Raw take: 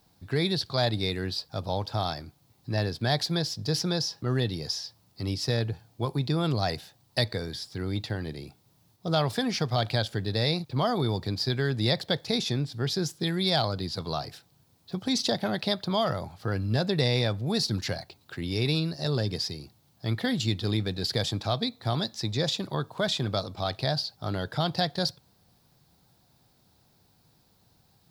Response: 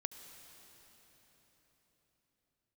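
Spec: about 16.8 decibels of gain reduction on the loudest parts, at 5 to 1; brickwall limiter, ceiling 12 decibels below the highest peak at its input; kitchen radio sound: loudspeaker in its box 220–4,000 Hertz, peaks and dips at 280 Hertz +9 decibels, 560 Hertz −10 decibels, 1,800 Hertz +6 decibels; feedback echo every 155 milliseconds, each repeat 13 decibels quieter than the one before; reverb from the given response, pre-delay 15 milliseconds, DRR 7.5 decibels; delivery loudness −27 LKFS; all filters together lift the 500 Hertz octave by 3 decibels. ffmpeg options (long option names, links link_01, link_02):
-filter_complex "[0:a]equalizer=frequency=500:width_type=o:gain=8,acompressor=threshold=-37dB:ratio=5,alimiter=level_in=9dB:limit=-24dB:level=0:latency=1,volume=-9dB,aecho=1:1:155|310|465:0.224|0.0493|0.0108,asplit=2[link_01][link_02];[1:a]atrim=start_sample=2205,adelay=15[link_03];[link_02][link_03]afir=irnorm=-1:irlink=0,volume=-5.5dB[link_04];[link_01][link_04]amix=inputs=2:normalize=0,highpass=220,equalizer=frequency=280:width_type=q:width=4:gain=9,equalizer=frequency=560:width_type=q:width=4:gain=-10,equalizer=frequency=1800:width_type=q:width=4:gain=6,lowpass=frequency=4000:width=0.5412,lowpass=frequency=4000:width=1.3066,volume=18dB"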